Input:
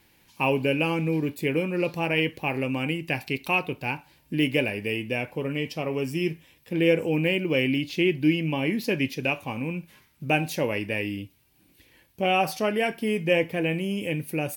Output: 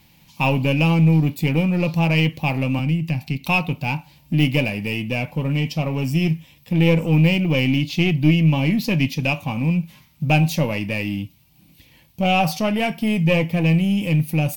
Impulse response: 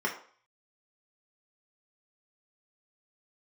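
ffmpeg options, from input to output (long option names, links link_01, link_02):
-filter_complex "[0:a]asplit=2[link_01][link_02];[link_02]aeval=exprs='clip(val(0),-1,0.0266)':channel_layout=same,volume=-4dB[link_03];[link_01][link_03]amix=inputs=2:normalize=0,asettb=1/sr,asplit=3[link_04][link_05][link_06];[link_04]atrim=end=2.794[link_07];[link_05]atrim=start=2.79:end=3.44,asetpts=PTS-STARTPTS,afade=type=in:duration=0.004:curve=qsin,afade=type=out:start_time=0.646:duration=0.004:curve=qsin,acrossover=split=280[link_08][link_09];[link_09]acompressor=threshold=-34dB:ratio=3[link_10];[link_08][link_10]amix=inputs=2:normalize=0[link_11];[link_06]atrim=start=3.436[link_12];[link_07][link_11]acrossfade=duration=0.004:curve1=hsin:curve2=qsin[link_13];[link_13][link_12]acrossfade=duration=0.004:curve1=qsin:curve2=hsin,equalizer=frequency=160:width_type=o:width=0.67:gain=8,equalizer=frequency=400:width_type=o:width=0.67:gain=-12,equalizer=frequency=1600:width_type=o:width=0.67:gain=-10,equalizer=frequency=10000:width_type=o:width=0.67:gain=-6,volume=4dB"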